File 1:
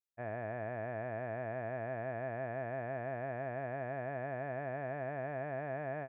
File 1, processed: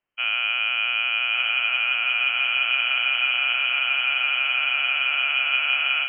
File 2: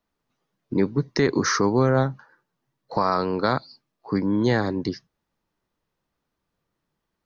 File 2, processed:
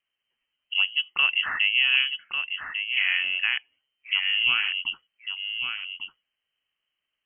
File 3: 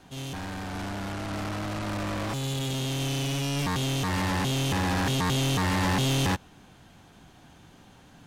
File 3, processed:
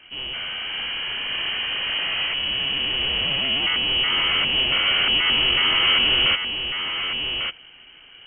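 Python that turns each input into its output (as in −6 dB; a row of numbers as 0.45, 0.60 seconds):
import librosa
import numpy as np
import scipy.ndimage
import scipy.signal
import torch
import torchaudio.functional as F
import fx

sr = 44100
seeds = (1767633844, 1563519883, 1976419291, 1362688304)

p1 = fx.dynamic_eq(x, sr, hz=430.0, q=2.1, threshold_db=-37.0, ratio=4.0, max_db=4)
p2 = p1 + fx.echo_single(p1, sr, ms=1147, db=-7.0, dry=0)
p3 = fx.freq_invert(p2, sr, carrier_hz=3100)
y = librosa.util.normalize(p3) * 10.0 ** (-9 / 20.0)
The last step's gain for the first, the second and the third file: +16.0, −4.5, +5.0 decibels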